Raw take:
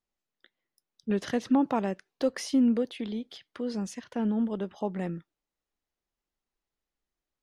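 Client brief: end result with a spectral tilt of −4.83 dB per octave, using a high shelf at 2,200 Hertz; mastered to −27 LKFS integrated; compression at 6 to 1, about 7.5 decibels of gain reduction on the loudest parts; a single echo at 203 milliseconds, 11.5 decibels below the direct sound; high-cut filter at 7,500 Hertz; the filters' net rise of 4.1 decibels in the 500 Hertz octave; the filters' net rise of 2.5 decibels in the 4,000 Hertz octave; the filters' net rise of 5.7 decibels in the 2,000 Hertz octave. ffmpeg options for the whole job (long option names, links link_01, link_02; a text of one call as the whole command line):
ffmpeg -i in.wav -af "lowpass=7500,equalizer=frequency=500:width_type=o:gain=4.5,equalizer=frequency=2000:width_type=o:gain=8,highshelf=frequency=2200:gain=-5.5,equalizer=frequency=4000:width_type=o:gain=6.5,acompressor=threshold=-26dB:ratio=6,aecho=1:1:203:0.266,volume=5.5dB" out.wav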